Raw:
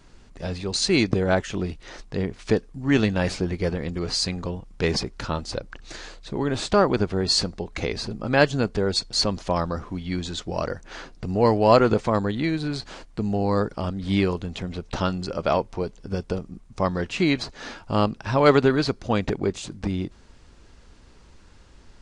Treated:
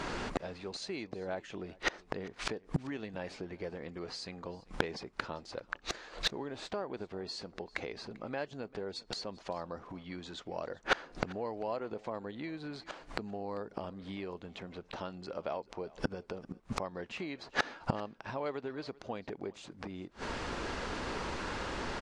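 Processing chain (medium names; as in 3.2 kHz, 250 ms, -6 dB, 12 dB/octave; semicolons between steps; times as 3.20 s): dynamic bell 1.3 kHz, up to -5 dB, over -40 dBFS, Q 2.2; compression 6:1, threshold -25 dBFS, peak gain reduction 13 dB; inverted gate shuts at -30 dBFS, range -29 dB; overdrive pedal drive 23 dB, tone 1.3 kHz, clips at -16 dBFS; on a send: delay 394 ms -22 dB; on the sum: trim +8 dB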